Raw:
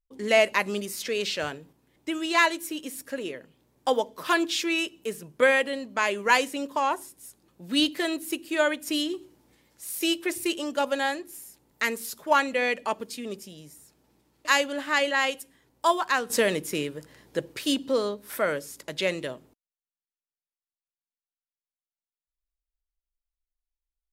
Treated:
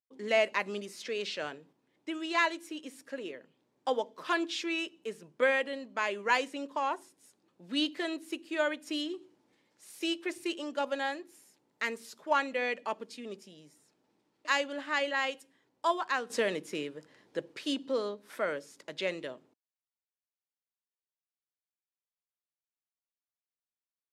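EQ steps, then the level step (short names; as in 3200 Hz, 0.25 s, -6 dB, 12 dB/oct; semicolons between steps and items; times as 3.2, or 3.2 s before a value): HPF 200 Hz 12 dB/oct; air absorption 68 m; -6.0 dB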